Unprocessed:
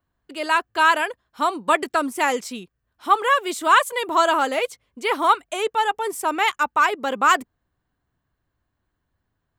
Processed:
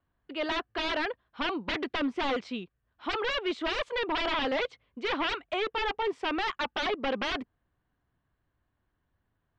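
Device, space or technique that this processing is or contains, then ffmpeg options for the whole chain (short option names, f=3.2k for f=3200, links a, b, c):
synthesiser wavefolder: -af "aeval=exprs='0.0841*(abs(mod(val(0)/0.0841+3,4)-2)-1)':c=same,lowpass=f=3.7k:w=0.5412,lowpass=f=3.7k:w=1.3066,volume=-2dB"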